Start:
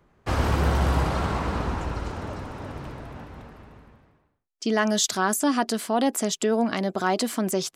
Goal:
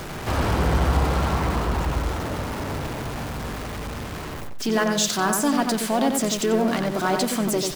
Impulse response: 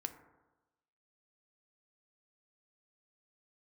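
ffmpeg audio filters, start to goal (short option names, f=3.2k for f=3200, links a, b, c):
-filter_complex "[0:a]aeval=exprs='val(0)+0.5*0.0447*sgn(val(0))':c=same,asplit=2[a][b];[b]asetrate=35002,aresample=44100,atempo=1.25992,volume=-11dB[c];[a][c]amix=inputs=2:normalize=0,asplit=2[d][e];[e]adelay=91,lowpass=f=3.2k:p=1,volume=-4.5dB,asplit=2[f][g];[g]adelay=91,lowpass=f=3.2k:p=1,volume=0.25,asplit=2[h][i];[i]adelay=91,lowpass=f=3.2k:p=1,volume=0.25[j];[d][f][h][j]amix=inputs=4:normalize=0,volume=-1.5dB"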